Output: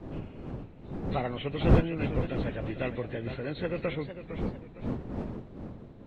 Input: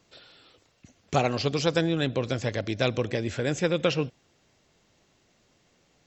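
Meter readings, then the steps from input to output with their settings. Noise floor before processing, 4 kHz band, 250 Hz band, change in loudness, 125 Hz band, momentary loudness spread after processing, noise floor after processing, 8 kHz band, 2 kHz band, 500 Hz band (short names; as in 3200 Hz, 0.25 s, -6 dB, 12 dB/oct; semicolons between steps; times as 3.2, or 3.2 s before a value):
-66 dBFS, -12.0 dB, -1.5 dB, -5.5 dB, 0.0 dB, 17 LU, -49 dBFS, n/a, -7.0 dB, -5.5 dB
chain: nonlinear frequency compression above 1300 Hz 1.5:1; wind noise 270 Hz -26 dBFS; warbling echo 0.455 s, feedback 36%, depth 144 cents, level -10.5 dB; gain -7.5 dB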